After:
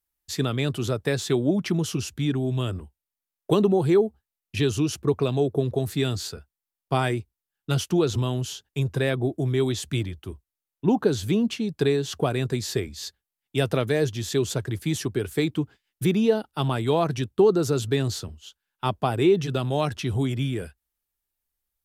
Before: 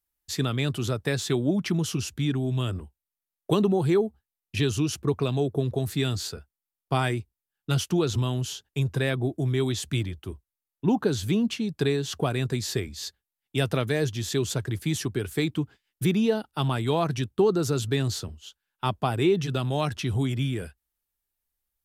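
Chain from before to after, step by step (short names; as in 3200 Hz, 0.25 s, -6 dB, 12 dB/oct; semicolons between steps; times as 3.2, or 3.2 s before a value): dynamic EQ 480 Hz, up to +4 dB, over -34 dBFS, Q 0.91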